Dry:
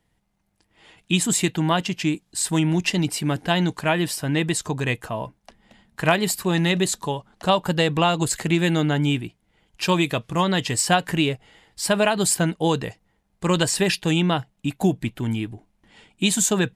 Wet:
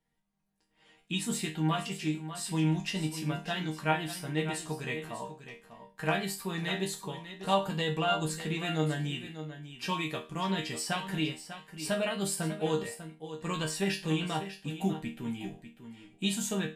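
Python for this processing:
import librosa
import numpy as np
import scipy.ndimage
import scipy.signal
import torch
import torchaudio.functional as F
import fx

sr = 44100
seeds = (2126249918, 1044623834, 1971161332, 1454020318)

y = fx.dynamic_eq(x, sr, hz=7200.0, q=2.5, threshold_db=-40.0, ratio=4.0, max_db=-5)
y = fx.resonator_bank(y, sr, root=51, chord='major', decay_s=0.31)
y = y + 10.0 ** (-11.5 / 20.0) * np.pad(y, (int(596 * sr / 1000.0), 0))[:len(y)]
y = y * 10.0 ** (5.0 / 20.0)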